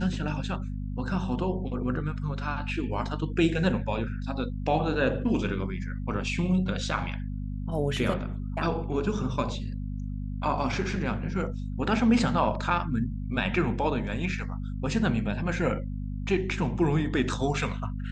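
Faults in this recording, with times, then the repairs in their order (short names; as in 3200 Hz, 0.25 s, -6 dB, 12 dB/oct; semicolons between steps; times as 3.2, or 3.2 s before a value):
hum 50 Hz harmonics 5 -33 dBFS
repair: de-hum 50 Hz, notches 5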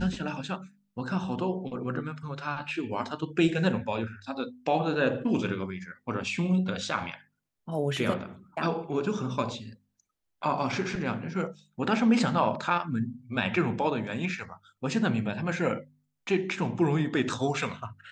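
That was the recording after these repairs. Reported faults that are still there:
none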